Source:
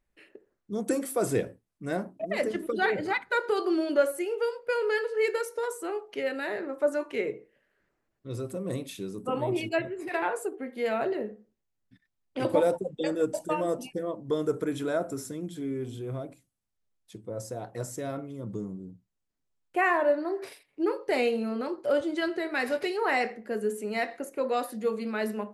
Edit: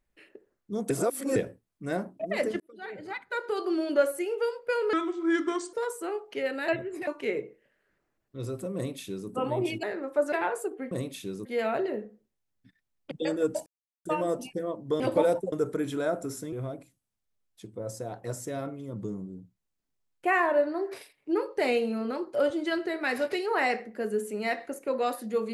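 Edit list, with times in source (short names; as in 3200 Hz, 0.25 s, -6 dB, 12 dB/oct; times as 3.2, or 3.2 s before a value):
0.9–1.36 reverse
2.6–4 fade in linear
4.93–5.54 speed 76%
6.49–6.98 swap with 9.74–10.13
8.66–9.2 copy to 10.72
12.38–12.9 move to 14.4
13.45 insert silence 0.39 s
15.4–16.03 cut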